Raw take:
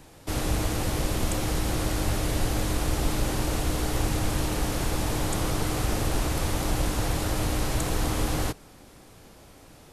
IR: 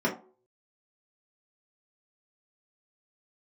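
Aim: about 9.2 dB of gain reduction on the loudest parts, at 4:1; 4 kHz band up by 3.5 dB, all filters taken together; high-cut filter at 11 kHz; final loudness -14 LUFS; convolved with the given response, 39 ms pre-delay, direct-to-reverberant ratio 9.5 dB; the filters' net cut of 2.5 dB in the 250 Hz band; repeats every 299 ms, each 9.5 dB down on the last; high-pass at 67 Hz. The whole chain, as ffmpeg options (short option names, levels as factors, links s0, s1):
-filter_complex "[0:a]highpass=67,lowpass=11000,equalizer=f=250:t=o:g=-3.5,equalizer=f=4000:t=o:g=4.5,acompressor=threshold=0.0158:ratio=4,aecho=1:1:299|598|897|1196:0.335|0.111|0.0365|0.012,asplit=2[s0][s1];[1:a]atrim=start_sample=2205,adelay=39[s2];[s1][s2]afir=irnorm=-1:irlink=0,volume=0.0891[s3];[s0][s3]amix=inputs=2:normalize=0,volume=13.3"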